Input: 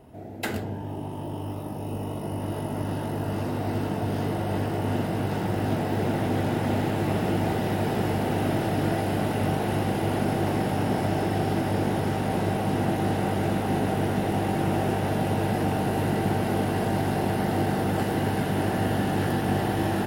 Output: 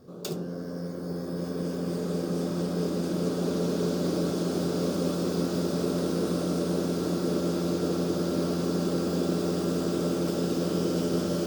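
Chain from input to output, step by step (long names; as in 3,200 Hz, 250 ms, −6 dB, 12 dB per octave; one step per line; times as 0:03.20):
flat-topped bell 830 Hz −14 dB 2.5 octaves
change of speed 1.75×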